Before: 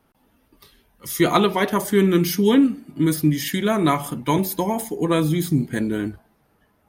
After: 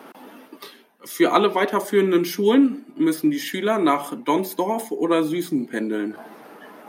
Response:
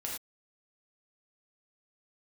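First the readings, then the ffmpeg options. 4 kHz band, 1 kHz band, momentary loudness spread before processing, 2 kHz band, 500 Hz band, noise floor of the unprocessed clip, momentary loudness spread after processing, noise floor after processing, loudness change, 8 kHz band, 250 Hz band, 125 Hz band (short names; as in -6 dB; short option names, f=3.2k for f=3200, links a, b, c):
-2.0 dB, +1.0 dB, 7 LU, 0.0 dB, +1.5 dB, -64 dBFS, 8 LU, -51 dBFS, -0.5 dB, -5.5 dB, -1.0 dB, -12.0 dB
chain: -af "areverse,acompressor=mode=upward:threshold=-23dB:ratio=2.5,areverse,highpass=f=250:w=0.5412,highpass=f=250:w=1.3066,highshelf=f=3.9k:g=-8.5,volume=1.5dB"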